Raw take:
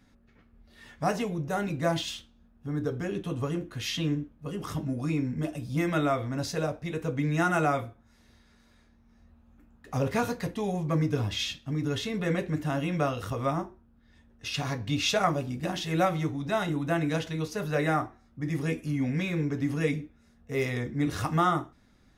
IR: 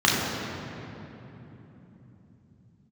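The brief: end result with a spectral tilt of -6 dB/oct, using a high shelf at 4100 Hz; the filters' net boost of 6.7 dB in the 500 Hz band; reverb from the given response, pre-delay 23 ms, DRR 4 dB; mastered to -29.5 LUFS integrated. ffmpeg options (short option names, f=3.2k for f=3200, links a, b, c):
-filter_complex "[0:a]equalizer=f=500:t=o:g=8.5,highshelf=f=4.1k:g=-7,asplit=2[a][b];[1:a]atrim=start_sample=2205,adelay=23[c];[b][c]afir=irnorm=-1:irlink=0,volume=-24dB[d];[a][d]amix=inputs=2:normalize=0,volume=-5dB"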